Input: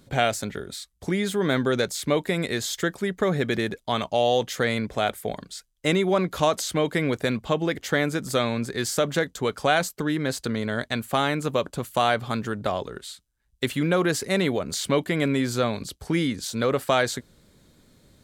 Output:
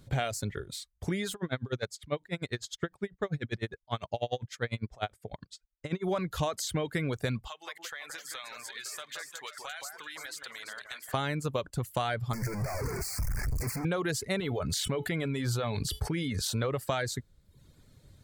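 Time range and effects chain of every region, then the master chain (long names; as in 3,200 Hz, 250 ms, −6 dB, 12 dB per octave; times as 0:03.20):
0:01.34–0:06.04: high-frequency loss of the air 57 metres + tremolo with a sine in dB 10 Hz, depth 24 dB
0:07.48–0:11.14: high-pass filter 1,300 Hz + downward compressor 5 to 1, threshold −33 dBFS + delay that swaps between a low-pass and a high-pass 171 ms, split 1,800 Hz, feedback 65%, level −3 dB
0:12.33–0:13.85: sign of each sample alone + elliptic band-stop filter 2,300–4,600 Hz
0:14.40–0:16.62: parametric band 7,000 Hz −3 dB 0.44 octaves + tuned comb filter 430 Hz, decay 0.17 s + envelope flattener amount 70%
whole clip: reverb reduction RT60 0.7 s; low shelf with overshoot 160 Hz +7 dB, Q 1.5; downward compressor, threshold −23 dBFS; level −3.5 dB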